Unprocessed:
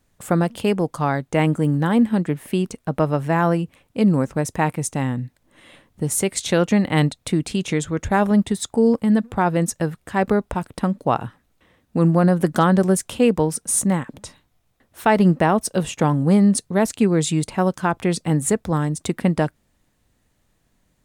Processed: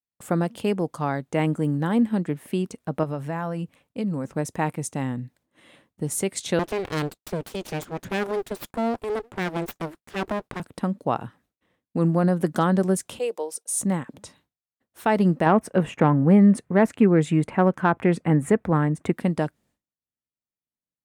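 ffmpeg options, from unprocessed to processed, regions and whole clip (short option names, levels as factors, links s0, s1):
-filter_complex "[0:a]asettb=1/sr,asplit=3[s0][s1][s2];[s0]atrim=end=3.034[s3];[s1]atrim=start=3.03:end=4.25,asetpts=PTS-STARTPTS,afade=t=in:d=0.004:c=qsin,afade=t=out:st=1.216:d=0.004:c=qsin,acompressor=threshold=0.112:ratio=4:attack=3.2:release=140:knee=1:detection=peak,bandreject=f=360:w=5.2[s4];[s2]atrim=start=4.246[s5];[s3][s4]acrossfade=d=0.004:c1=hsin:c2=qsin[s6];[s6][s5]acrossfade=d=0.004:c1=qsin:c2=hsin,asettb=1/sr,asplit=3[s7][s8][s9];[s7]atrim=end=6.594[s10];[s8]atrim=start=6.59:end=10.6,asetpts=PTS-STARTPTS,afade=t=in:d=0.004:c=qsin,afade=t=out:st=4.006:d=0.004:c=qsin,agate=range=0.0224:threshold=0.0112:ratio=3:release=100:detection=peak,aeval=exprs='abs(val(0))':c=same[s11];[s9]atrim=start=10.596[s12];[s10][s11]acrossfade=d=0.004:c1=hsin:c2=qsin[s13];[s13][s12]acrossfade=d=0.004:c1=qsin:c2=hsin,asettb=1/sr,asplit=3[s14][s15][s16];[s14]atrim=end=13.194[s17];[s15]atrim=start=13.19:end=13.8,asetpts=PTS-STARTPTS,afade=t=in:d=0.004:c=qsin,afade=t=out:st=0.606:d=0.004:c=qsin,agate=range=0.0224:threshold=0.00891:ratio=3:release=100:detection=peak,highpass=f=460:w=0.5412,highpass=f=460:w=1.3066,equalizer=f=1500:t=o:w=1.5:g=-9.5[s18];[s16]atrim=start=13.796[s19];[s17][s18]acrossfade=d=0.004:c1=hsin:c2=qsin[s20];[s20][s19]acrossfade=d=0.004:c1=qsin:c2=hsin,asettb=1/sr,asplit=3[s21][s22][s23];[s21]atrim=end=15.464[s24];[s22]atrim=start=15.46:end=19.13,asetpts=PTS-STARTPTS,afade=t=in:d=0.004:c=qsin,afade=t=out:st=3.666:d=0.004:c=qsin,highshelf=f=3000:t=q:w=1.5:g=-13,acontrast=23[s25];[s23]atrim=start=19.126[s26];[s24][s25]acrossfade=d=0.004:c1=hsin:c2=qsin[s27];[s27][s26]acrossfade=d=0.004:c1=qsin:c2=hsin,highpass=f=270:p=1,agate=range=0.0224:threshold=0.00251:ratio=3:detection=peak,lowshelf=f=370:g=8,volume=0.501"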